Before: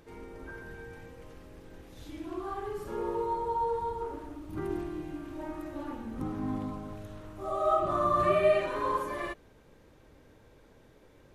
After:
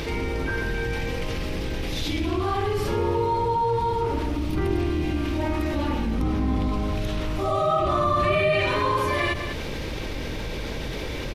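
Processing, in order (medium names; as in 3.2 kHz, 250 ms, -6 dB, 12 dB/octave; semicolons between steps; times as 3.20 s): octave divider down 2 oct, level +2 dB; high-order bell 3.4 kHz +9 dB; delay 200 ms -22 dB; level flattener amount 70%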